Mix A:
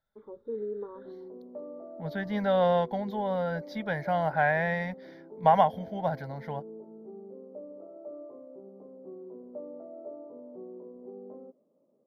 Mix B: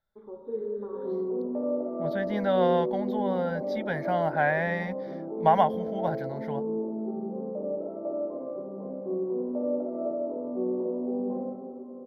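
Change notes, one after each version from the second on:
background +6.5 dB; reverb: on, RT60 2.9 s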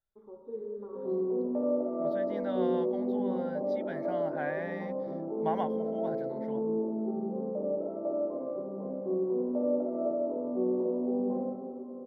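first voice -6.0 dB; second voice -11.5 dB

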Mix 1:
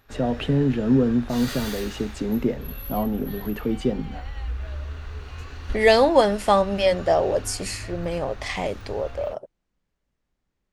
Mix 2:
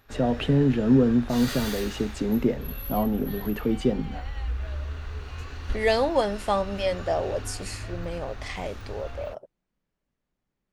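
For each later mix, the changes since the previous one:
second voice -6.5 dB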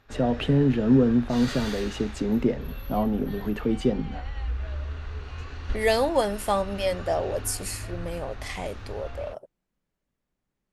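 second voice: remove LPF 6500 Hz 12 dB/oct; background: add air absorption 58 m

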